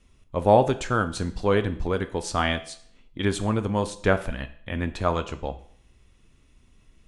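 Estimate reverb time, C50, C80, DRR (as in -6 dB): 0.60 s, 14.0 dB, 17.5 dB, 9.0 dB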